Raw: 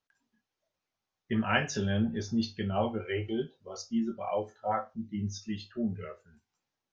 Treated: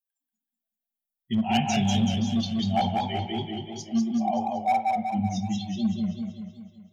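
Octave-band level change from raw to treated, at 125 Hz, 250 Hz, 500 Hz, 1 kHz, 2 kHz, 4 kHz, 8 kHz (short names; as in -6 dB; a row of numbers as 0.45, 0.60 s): +6.0 dB, +7.0 dB, -0.5 dB, +10.5 dB, -1.5 dB, +8.5 dB, n/a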